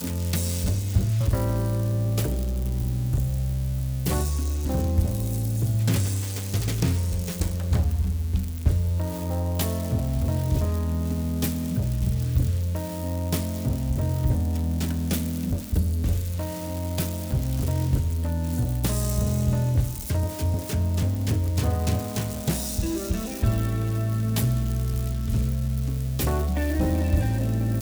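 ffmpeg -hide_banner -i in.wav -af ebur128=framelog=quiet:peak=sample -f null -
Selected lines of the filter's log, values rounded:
Integrated loudness:
  I:         -25.9 LUFS
  Threshold: -35.9 LUFS
Loudness range:
  LRA:         1.3 LU
  Threshold: -46.0 LUFS
  LRA low:   -26.7 LUFS
  LRA high:  -25.4 LUFS
Sample peak:
  Peak:       -9.7 dBFS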